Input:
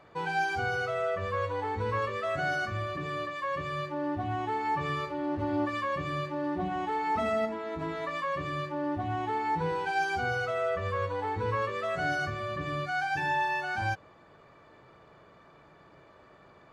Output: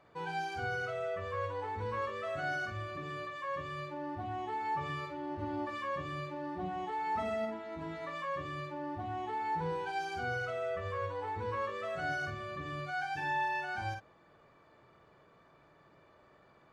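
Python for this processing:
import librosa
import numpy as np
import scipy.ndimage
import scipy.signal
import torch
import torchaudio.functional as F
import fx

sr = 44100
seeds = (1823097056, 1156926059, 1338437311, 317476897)

y = fx.doubler(x, sr, ms=49.0, db=-6)
y = y * 10.0 ** (-7.5 / 20.0)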